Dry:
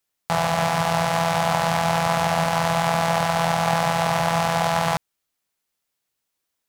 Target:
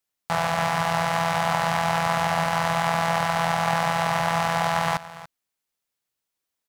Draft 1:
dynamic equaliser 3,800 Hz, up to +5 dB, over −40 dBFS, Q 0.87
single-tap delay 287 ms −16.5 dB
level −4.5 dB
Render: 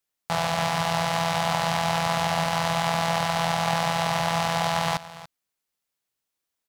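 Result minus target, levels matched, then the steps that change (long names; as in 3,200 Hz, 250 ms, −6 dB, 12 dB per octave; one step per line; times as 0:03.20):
4,000 Hz band +4.0 dB
change: dynamic equaliser 1,600 Hz, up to +5 dB, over −40 dBFS, Q 0.87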